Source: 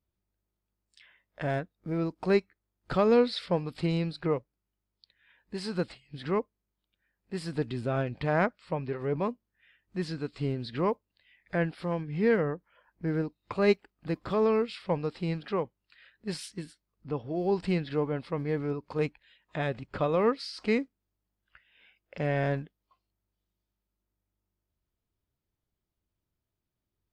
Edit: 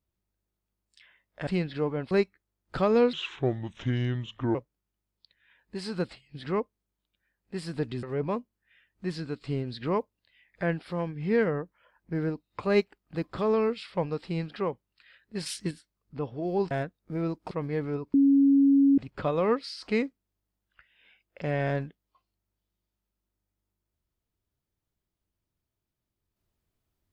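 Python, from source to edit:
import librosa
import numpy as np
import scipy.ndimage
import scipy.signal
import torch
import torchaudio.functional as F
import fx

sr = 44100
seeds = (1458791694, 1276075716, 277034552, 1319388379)

y = fx.edit(x, sr, fx.swap(start_s=1.47, length_s=0.8, other_s=17.63, other_length_s=0.64),
    fx.speed_span(start_s=3.29, length_s=1.05, speed=0.74),
    fx.cut(start_s=7.82, length_s=1.13),
    fx.clip_gain(start_s=16.38, length_s=0.25, db=6.5),
    fx.bleep(start_s=18.9, length_s=0.84, hz=277.0, db=-16.5), tone=tone)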